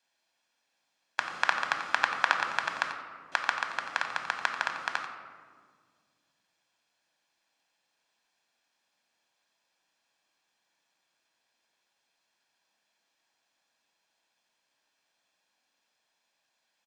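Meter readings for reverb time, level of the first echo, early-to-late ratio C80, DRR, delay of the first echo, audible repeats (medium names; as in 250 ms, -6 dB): 1.8 s, -11.0 dB, 7.0 dB, 4.0 dB, 89 ms, 1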